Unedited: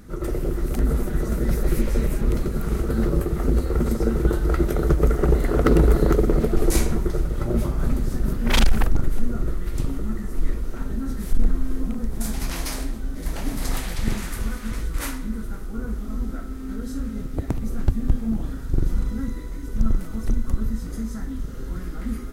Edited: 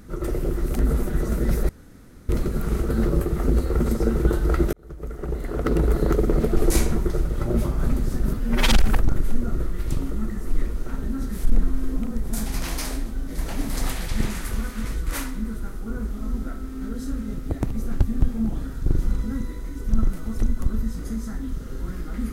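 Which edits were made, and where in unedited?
1.69–2.29 s: room tone
4.73–6.55 s: fade in
8.34–8.59 s: stretch 1.5×

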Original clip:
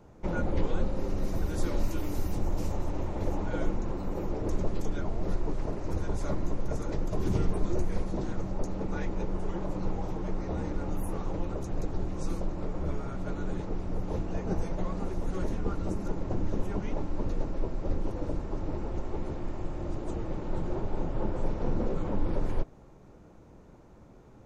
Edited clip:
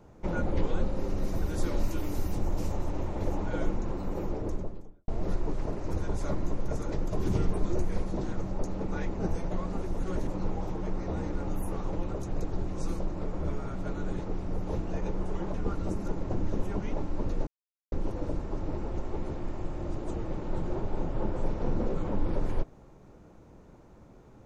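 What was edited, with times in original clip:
4.21–5.08 s: studio fade out
9.15–9.68 s: swap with 14.42–15.54 s
17.47–17.92 s: mute

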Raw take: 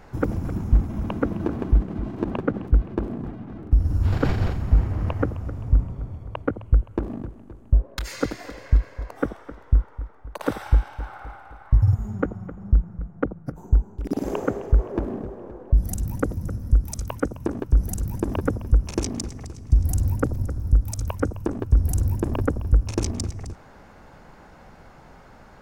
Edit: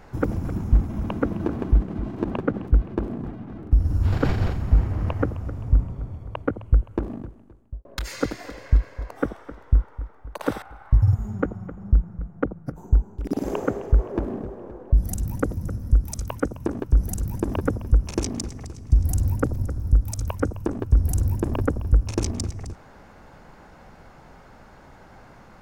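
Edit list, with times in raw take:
7.02–7.85 s: fade out
10.62–11.42 s: delete

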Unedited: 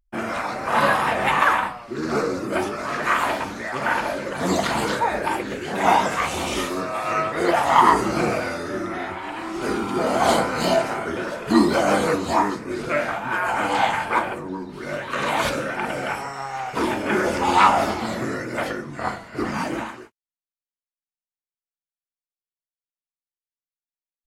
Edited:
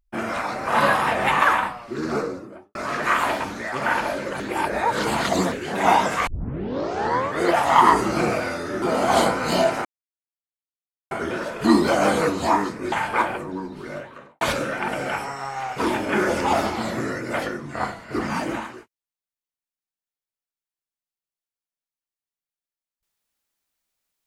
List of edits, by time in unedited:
1.94–2.75 s: studio fade out
4.40–5.52 s: reverse
6.27 s: tape start 1.15 s
8.82–9.94 s: delete
10.97 s: insert silence 1.26 s
12.78–13.89 s: delete
14.63–15.38 s: studio fade out
17.50–17.77 s: delete

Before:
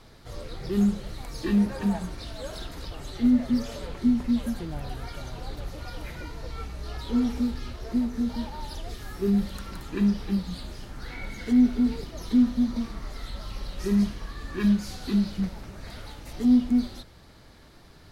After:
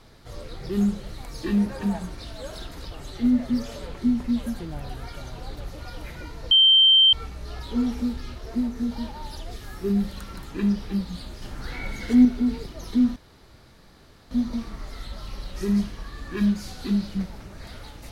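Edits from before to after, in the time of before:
6.51 s: add tone 3.13 kHz -12 dBFS 0.62 s
10.80–11.63 s: gain +4 dB
12.54 s: insert room tone 1.15 s

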